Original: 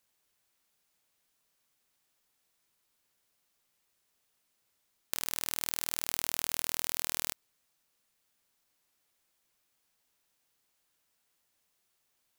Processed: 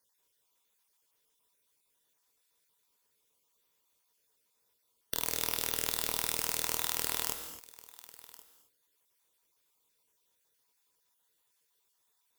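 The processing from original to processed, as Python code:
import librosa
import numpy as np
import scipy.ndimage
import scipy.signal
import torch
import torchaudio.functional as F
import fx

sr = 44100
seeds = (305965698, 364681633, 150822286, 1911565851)

p1 = fx.spec_dropout(x, sr, seeds[0], share_pct=32)
p2 = fx.high_shelf(p1, sr, hz=5100.0, db=6.5)
p3 = fx.small_body(p2, sr, hz=(450.0, 970.0, 3500.0), ring_ms=35, db=11)
p4 = p3 + fx.echo_single(p3, sr, ms=1096, db=-20.0, dry=0)
p5 = fx.cheby_harmonics(p4, sr, harmonics=(5, 6, 7), levels_db=(-11, -12, -18), full_scale_db=1.0)
p6 = fx.rev_gated(p5, sr, seeds[1], gate_ms=290, shape='flat', drr_db=6.5)
y = p6 * 10.0 ** (-7.0 / 20.0)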